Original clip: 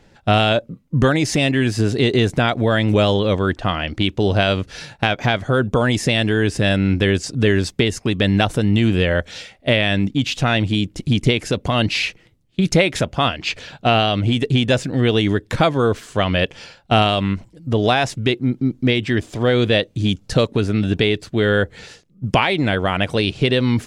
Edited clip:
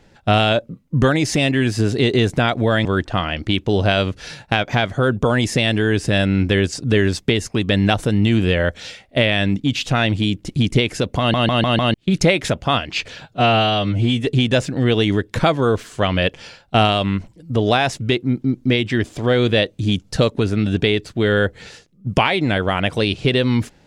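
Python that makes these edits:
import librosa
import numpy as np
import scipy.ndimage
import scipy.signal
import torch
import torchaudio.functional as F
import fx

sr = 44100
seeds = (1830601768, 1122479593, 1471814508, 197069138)

y = fx.edit(x, sr, fx.cut(start_s=2.85, length_s=0.51),
    fx.stutter_over(start_s=11.7, slice_s=0.15, count=5),
    fx.stretch_span(start_s=13.76, length_s=0.68, factor=1.5), tone=tone)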